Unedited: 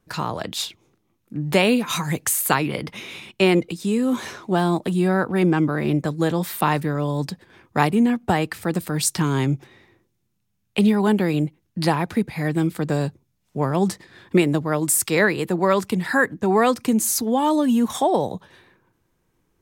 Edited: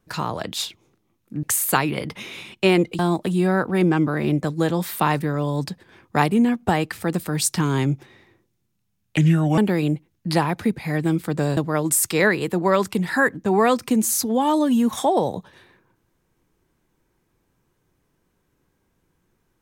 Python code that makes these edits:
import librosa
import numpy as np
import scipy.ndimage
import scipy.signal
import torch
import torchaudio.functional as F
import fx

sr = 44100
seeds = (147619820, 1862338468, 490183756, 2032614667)

y = fx.edit(x, sr, fx.cut(start_s=1.43, length_s=0.77),
    fx.cut(start_s=3.76, length_s=0.84),
    fx.speed_span(start_s=10.78, length_s=0.31, speed=0.76),
    fx.cut(start_s=13.08, length_s=1.46), tone=tone)